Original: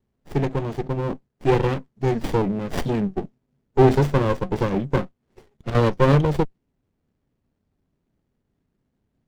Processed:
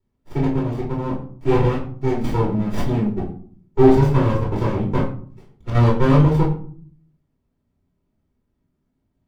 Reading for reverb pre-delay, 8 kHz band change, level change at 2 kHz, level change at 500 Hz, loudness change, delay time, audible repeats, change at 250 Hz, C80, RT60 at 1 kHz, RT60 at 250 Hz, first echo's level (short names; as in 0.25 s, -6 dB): 3 ms, n/a, -1.5 dB, +1.0 dB, +2.5 dB, none, none, +4.0 dB, 11.5 dB, 0.50 s, 0.85 s, none